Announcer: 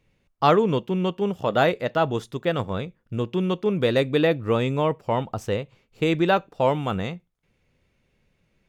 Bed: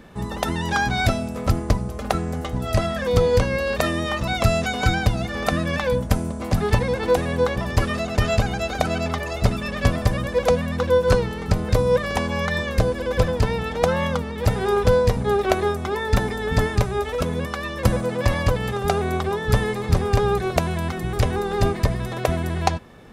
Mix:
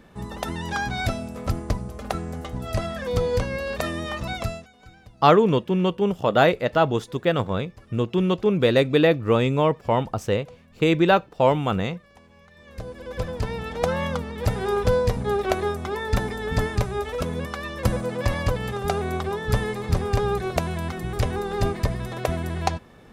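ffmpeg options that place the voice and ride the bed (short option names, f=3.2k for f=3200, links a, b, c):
-filter_complex "[0:a]adelay=4800,volume=2.5dB[a];[1:a]volume=20dB,afade=t=out:st=4.3:d=0.37:silence=0.0668344,afade=t=in:st=12.56:d=1.36:silence=0.0530884[b];[a][b]amix=inputs=2:normalize=0"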